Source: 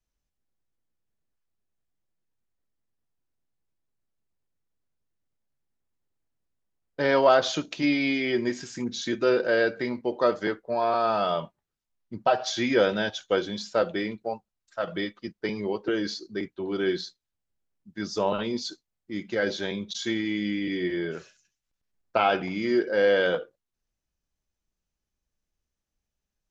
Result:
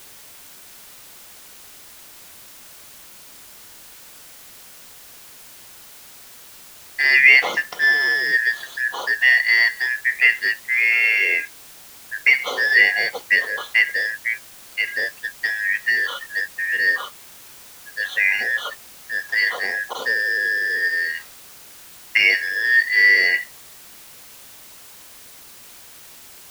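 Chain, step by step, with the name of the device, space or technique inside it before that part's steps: split-band scrambled radio (four-band scrambler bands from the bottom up 3142; BPF 370–3400 Hz; white noise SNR 21 dB); gain +7.5 dB

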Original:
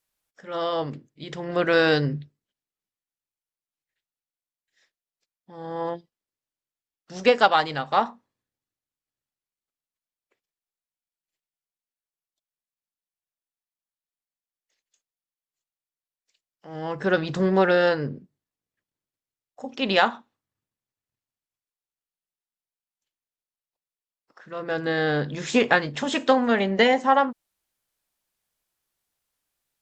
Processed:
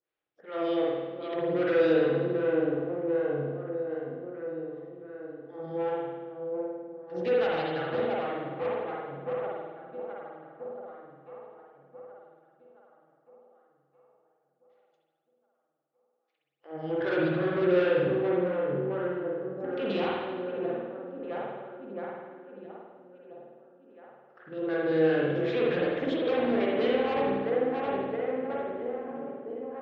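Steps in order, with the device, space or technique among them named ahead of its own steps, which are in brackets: 16.89–17.69 bell 1400 Hz +6 dB 0.95 oct; dark delay 0.667 s, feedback 60%, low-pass 1100 Hz, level -6.5 dB; vibe pedal into a guitar amplifier (photocell phaser 2.6 Hz; tube stage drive 28 dB, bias 0.45; speaker cabinet 93–3800 Hz, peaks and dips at 140 Hz +4 dB, 220 Hz -5 dB, 340 Hz +8 dB, 490 Hz +6 dB, 960 Hz -6 dB); spring tank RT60 1.3 s, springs 50 ms, chirp 35 ms, DRR -4 dB; gain -3.5 dB

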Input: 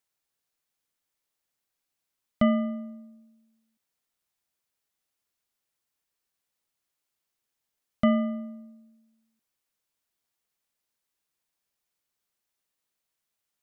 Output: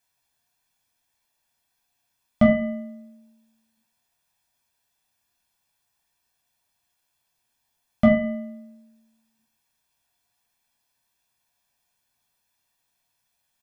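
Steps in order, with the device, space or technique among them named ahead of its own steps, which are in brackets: microphone above a desk (comb 1.2 ms, depth 60%; reverb RT60 0.40 s, pre-delay 7 ms, DRR -2.5 dB); gain +3.5 dB

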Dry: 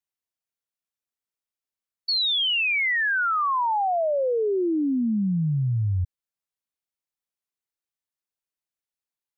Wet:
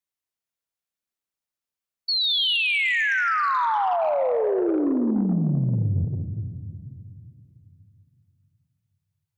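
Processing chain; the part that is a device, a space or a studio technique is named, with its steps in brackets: saturated reverb return (on a send at -4 dB: reverb RT60 2.6 s, pre-delay 0.117 s + soft clip -18 dBFS, distortion -16 dB); 2.1–2.56 on the sum: resonant low shelf 610 Hz -11 dB, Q 3

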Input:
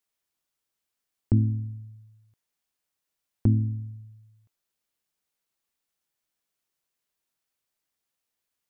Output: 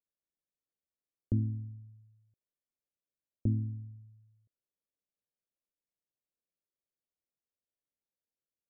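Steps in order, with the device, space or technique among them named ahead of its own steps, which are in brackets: under water (LPF 560 Hz 24 dB/oct; bell 570 Hz +6 dB 0.37 oct); gain -8.5 dB

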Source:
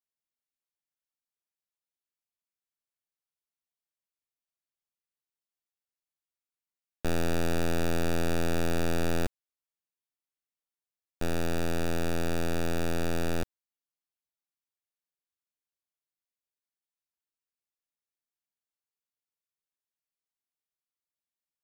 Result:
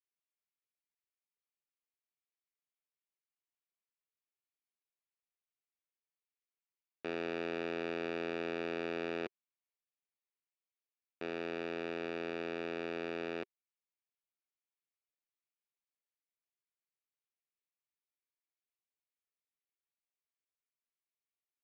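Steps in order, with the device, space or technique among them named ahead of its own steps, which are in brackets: phone earpiece (speaker cabinet 370–3700 Hz, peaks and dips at 390 Hz +5 dB, 570 Hz -4 dB, 820 Hz -6 dB, 1500 Hz -4 dB, 2300 Hz +4 dB, 3500 Hz -4 dB); gain -4 dB

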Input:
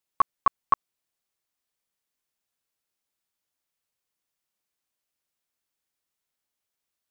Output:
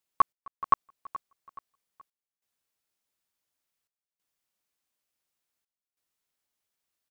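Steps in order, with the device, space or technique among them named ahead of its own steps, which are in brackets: trance gate with a delay (step gate "xx..xxxxxxx" 93 bpm -24 dB; feedback echo 0.425 s, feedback 38%, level -16 dB)

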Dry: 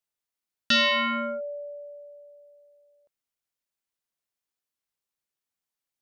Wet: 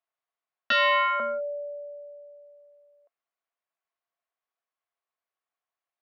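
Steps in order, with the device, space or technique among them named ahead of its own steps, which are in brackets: tin-can telephone (BPF 540–2100 Hz; small resonant body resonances 690/1100 Hz, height 9 dB); 0.72–1.2 steep high-pass 410 Hz 36 dB/oct; gain +3.5 dB

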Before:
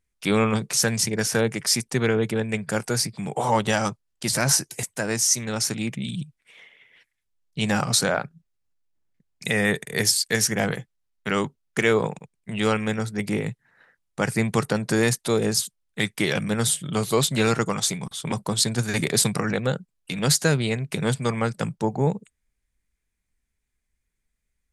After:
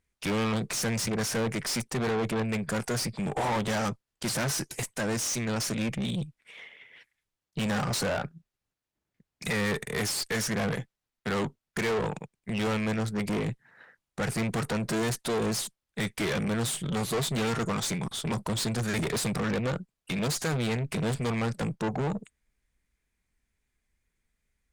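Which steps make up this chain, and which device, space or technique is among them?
tube preamp driven hard (tube stage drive 30 dB, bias 0.4; low shelf 130 Hz -3.5 dB; high shelf 5000 Hz -6 dB); gain +5 dB

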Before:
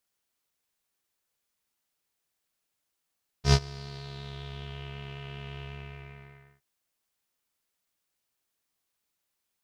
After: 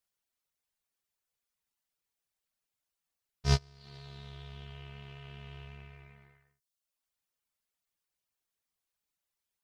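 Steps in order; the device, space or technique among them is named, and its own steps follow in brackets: reverb removal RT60 0.73 s; low shelf boost with a cut just above (low shelf 71 Hz +5.5 dB; bell 310 Hz -3.5 dB 0.66 oct); gain -5 dB

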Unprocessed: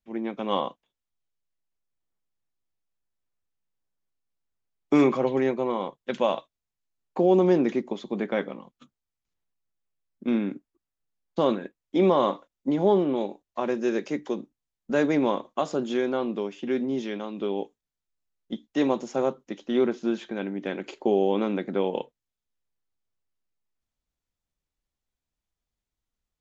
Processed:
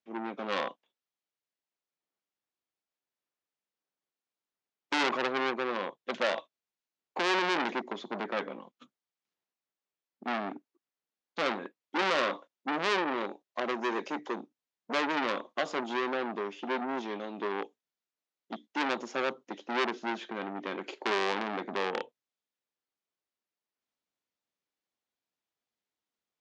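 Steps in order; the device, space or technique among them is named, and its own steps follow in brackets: public-address speaker with an overloaded transformer (core saturation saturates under 3200 Hz; BPF 270–5700 Hz)

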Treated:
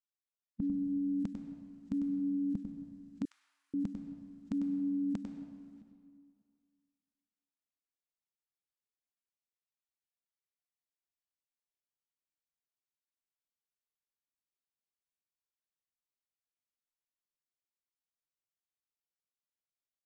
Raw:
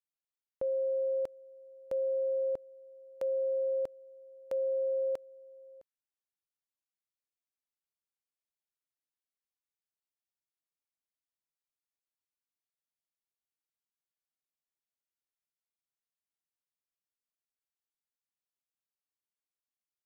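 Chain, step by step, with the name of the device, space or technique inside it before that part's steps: spectral noise reduction 12 dB; monster voice (pitch shift -11 st; formant shift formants -5.5 st; low shelf 140 Hz +4 dB; echo 98 ms -7.5 dB; reverb RT60 2.1 s, pre-delay 94 ms, DRR 7 dB); 3.25–3.74 inverse Chebyshev high-pass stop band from 270 Hz, stop band 70 dB

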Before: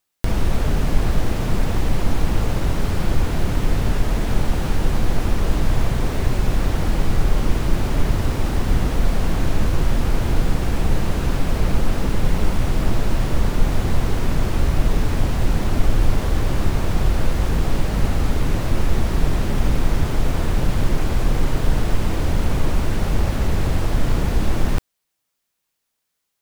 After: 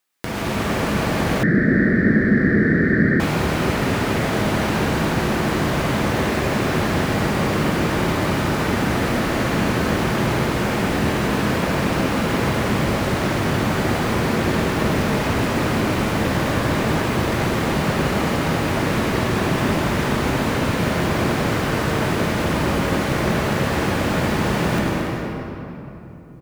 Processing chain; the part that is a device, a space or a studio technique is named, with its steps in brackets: stadium PA (HPF 160 Hz 12 dB/oct; bell 1800 Hz +4.5 dB 1.3 oct; loudspeakers at several distances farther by 78 m -11 dB, 98 m -10 dB; reverb RT60 3.3 s, pre-delay 87 ms, DRR -3 dB); 1.43–3.2 EQ curve 110 Hz 0 dB, 210 Hz +8 dB, 360 Hz +5 dB, 610 Hz -6 dB, 940 Hz -26 dB, 1800 Hz +13 dB, 2700 Hz -27 dB, 4400 Hz -15 dB, 6800 Hz -25 dB

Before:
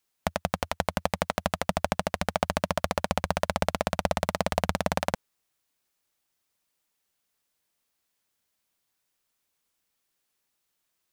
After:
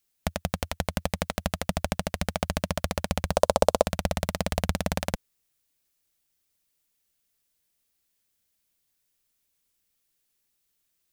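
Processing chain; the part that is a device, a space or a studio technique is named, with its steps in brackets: smiley-face EQ (low shelf 87 Hz +8.5 dB; bell 970 Hz -6 dB 1.5 oct; high shelf 8300 Hz +5 dB); 3.32–3.87 graphic EQ 125/250/500/1000/2000/4000/8000 Hz -11/+3/+12/+9/-7/+3/+5 dB

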